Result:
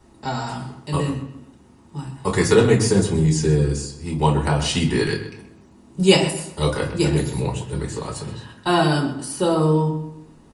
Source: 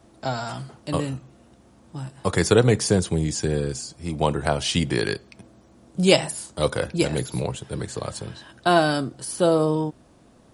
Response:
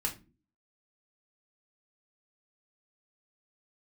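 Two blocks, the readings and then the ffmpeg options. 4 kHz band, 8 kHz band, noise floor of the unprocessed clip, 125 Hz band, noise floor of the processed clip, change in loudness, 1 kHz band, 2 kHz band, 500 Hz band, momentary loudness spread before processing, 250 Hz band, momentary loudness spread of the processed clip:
+2.0 dB, +1.0 dB, −54 dBFS, +5.0 dB, −50 dBFS, +3.0 dB, +2.0 dB, +1.5 dB, +1.5 dB, 15 LU, +4.0 dB, 15 LU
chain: -filter_complex "[0:a]asplit=2[link_01][link_02];[link_02]adelay=127,lowpass=frequency=3700:poles=1,volume=-11dB,asplit=2[link_03][link_04];[link_04]adelay=127,lowpass=frequency=3700:poles=1,volume=0.36,asplit=2[link_05][link_06];[link_06]adelay=127,lowpass=frequency=3700:poles=1,volume=0.36,asplit=2[link_07][link_08];[link_08]adelay=127,lowpass=frequency=3700:poles=1,volume=0.36[link_09];[link_01][link_03][link_05][link_07][link_09]amix=inputs=5:normalize=0[link_10];[1:a]atrim=start_sample=2205[link_11];[link_10][link_11]afir=irnorm=-1:irlink=0,volume=-1.5dB"

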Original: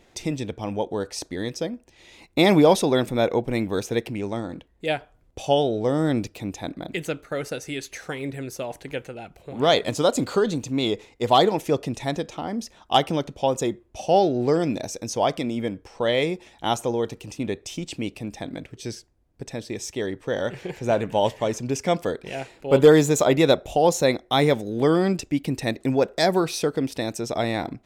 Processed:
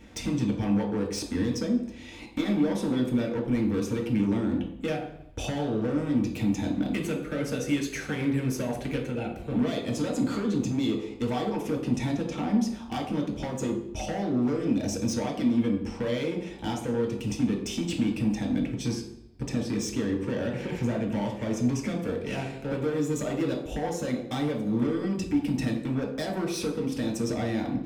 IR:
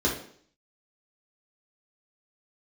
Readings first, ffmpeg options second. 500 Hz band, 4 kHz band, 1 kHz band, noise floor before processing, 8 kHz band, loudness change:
−10.0 dB, −10.0 dB, −12.0 dB, −58 dBFS, −5.5 dB, −5.0 dB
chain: -filter_complex "[0:a]acompressor=threshold=-30dB:ratio=8,volume=31dB,asoftclip=hard,volume=-31dB,asplit=2[link_01][link_02];[1:a]atrim=start_sample=2205,asetrate=31752,aresample=44100[link_03];[link_02][link_03]afir=irnorm=-1:irlink=0,volume=-12dB[link_04];[link_01][link_04]amix=inputs=2:normalize=0,volume=1.5dB"

